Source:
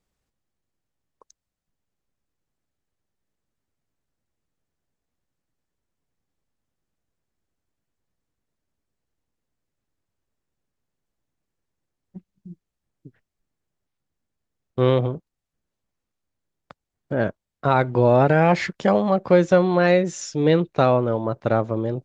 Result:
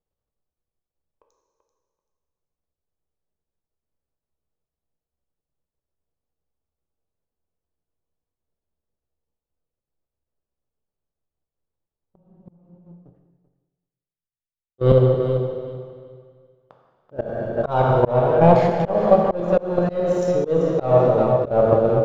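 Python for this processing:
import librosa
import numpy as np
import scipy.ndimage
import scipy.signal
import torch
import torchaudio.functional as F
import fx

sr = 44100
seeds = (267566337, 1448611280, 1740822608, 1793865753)

y = fx.hum_notches(x, sr, base_hz=50, count=5)
y = fx.leveller(y, sr, passes=2)
y = fx.graphic_eq(y, sr, hz=(250, 500, 2000), db=(-5, 4, -11))
y = fx.rider(y, sr, range_db=4, speed_s=0.5)
y = fx.bass_treble(y, sr, bass_db=1, treble_db=-14)
y = fx.level_steps(y, sr, step_db=12)
y = fx.echo_feedback(y, sr, ms=386, feedback_pct=19, wet_db=-10)
y = fx.rev_plate(y, sr, seeds[0], rt60_s=1.9, hf_ratio=0.95, predelay_ms=0, drr_db=1.5)
y = fx.auto_swell(y, sr, attack_ms=249.0)
y = fx.band_widen(y, sr, depth_pct=70, at=(12.5, 14.92))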